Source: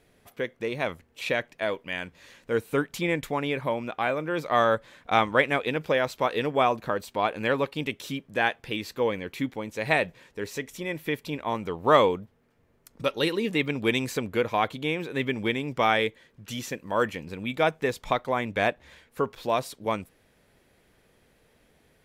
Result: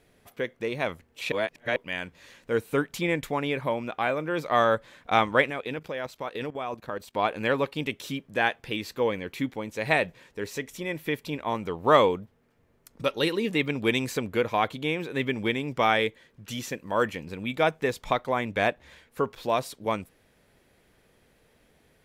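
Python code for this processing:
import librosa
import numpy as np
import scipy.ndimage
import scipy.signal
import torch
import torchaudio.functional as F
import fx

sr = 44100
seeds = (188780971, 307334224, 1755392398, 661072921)

y = fx.level_steps(x, sr, step_db=16, at=(5.5, 7.15))
y = fx.edit(y, sr, fx.reverse_span(start_s=1.32, length_s=0.44), tone=tone)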